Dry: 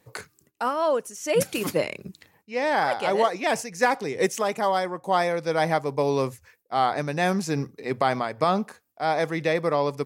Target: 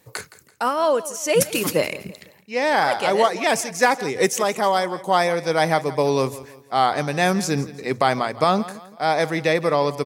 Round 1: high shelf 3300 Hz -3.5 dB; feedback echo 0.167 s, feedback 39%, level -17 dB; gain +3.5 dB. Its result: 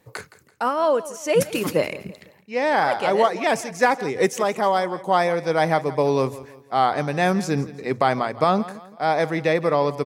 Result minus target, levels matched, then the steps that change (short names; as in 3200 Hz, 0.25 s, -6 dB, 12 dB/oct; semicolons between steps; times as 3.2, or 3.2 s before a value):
8000 Hz band -6.5 dB
change: high shelf 3300 Hz +5.5 dB